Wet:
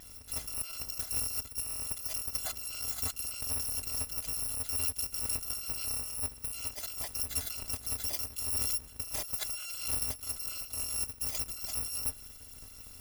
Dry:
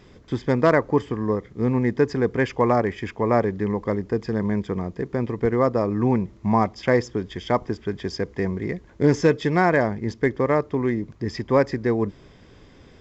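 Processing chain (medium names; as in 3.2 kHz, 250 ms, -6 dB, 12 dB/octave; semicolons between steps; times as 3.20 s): bit-reversed sample order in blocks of 256 samples; dynamic bell 820 Hz, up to +6 dB, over -46 dBFS, Q 1; compressor with a negative ratio -29 dBFS, ratio -1; trim -7 dB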